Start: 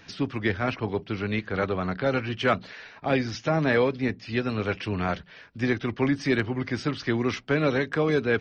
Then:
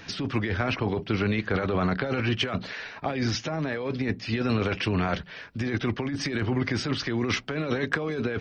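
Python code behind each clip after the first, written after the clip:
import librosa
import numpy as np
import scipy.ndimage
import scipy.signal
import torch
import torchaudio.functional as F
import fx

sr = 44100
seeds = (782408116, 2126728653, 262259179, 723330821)

y = fx.over_compress(x, sr, threshold_db=-29.0, ratio=-1.0)
y = y * 10.0 ** (2.5 / 20.0)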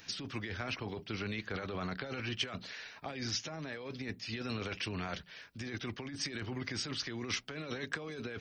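y = librosa.effects.preemphasis(x, coef=0.8, zi=[0.0])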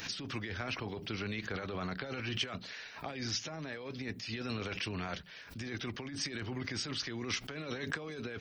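y = fx.pre_swell(x, sr, db_per_s=95.0)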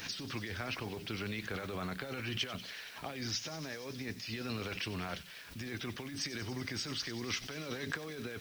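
y = fx.quant_dither(x, sr, seeds[0], bits=10, dither='triangular')
y = fx.echo_wet_highpass(y, sr, ms=94, feedback_pct=83, hz=2800.0, wet_db=-12.5)
y = y * 10.0 ** (-1.0 / 20.0)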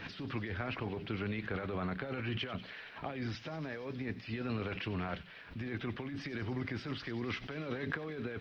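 y = fx.air_absorb(x, sr, metres=400.0)
y = y * 10.0 ** (3.5 / 20.0)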